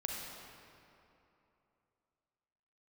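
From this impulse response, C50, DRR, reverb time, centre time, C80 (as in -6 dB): -0.5 dB, -1.0 dB, 3.0 s, 121 ms, 1.5 dB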